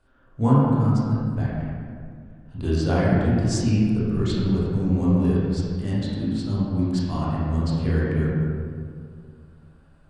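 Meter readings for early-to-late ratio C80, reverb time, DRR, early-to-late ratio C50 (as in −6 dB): −1.0 dB, 2.1 s, −8.5 dB, −3.5 dB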